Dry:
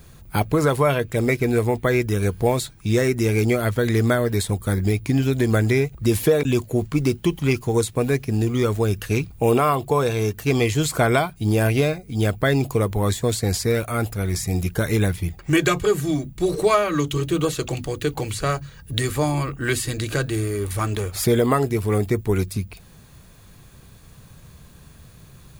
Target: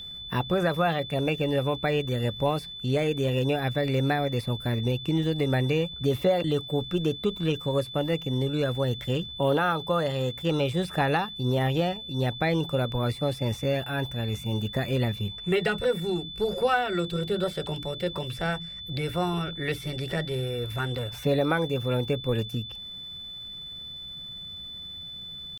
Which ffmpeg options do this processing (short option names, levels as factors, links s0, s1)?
-filter_complex "[0:a]asetrate=52444,aresample=44100,atempo=0.840896,aeval=exprs='val(0)+0.0355*sin(2*PI*3500*n/s)':c=same,acrossover=split=3300[s0][s1];[s1]acompressor=threshold=0.01:ratio=4:attack=1:release=60[s2];[s0][s2]amix=inputs=2:normalize=0,volume=0.501"